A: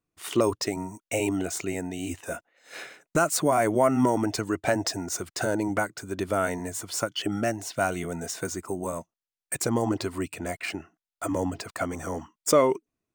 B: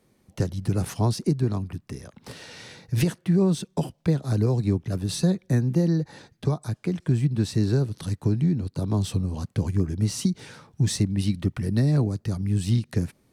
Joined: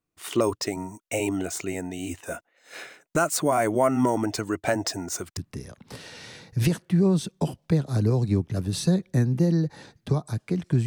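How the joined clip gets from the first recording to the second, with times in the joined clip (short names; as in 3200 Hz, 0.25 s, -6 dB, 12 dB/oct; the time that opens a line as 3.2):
A
5.37 switch to B from 1.73 s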